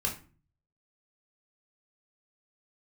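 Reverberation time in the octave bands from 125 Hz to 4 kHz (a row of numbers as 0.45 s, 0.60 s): 0.75 s, 0.55 s, 0.40 s, 0.35 s, 0.35 s, 0.25 s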